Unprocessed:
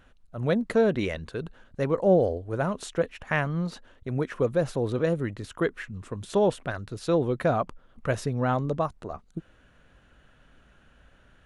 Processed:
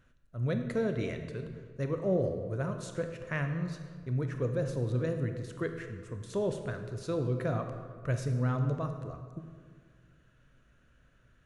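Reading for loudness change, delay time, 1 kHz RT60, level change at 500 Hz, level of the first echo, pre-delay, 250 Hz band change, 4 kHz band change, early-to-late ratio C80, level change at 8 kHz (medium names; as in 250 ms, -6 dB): -6.5 dB, no echo, 1.7 s, -8.5 dB, no echo, 23 ms, -6.5 dB, -9.0 dB, 8.5 dB, -6.0 dB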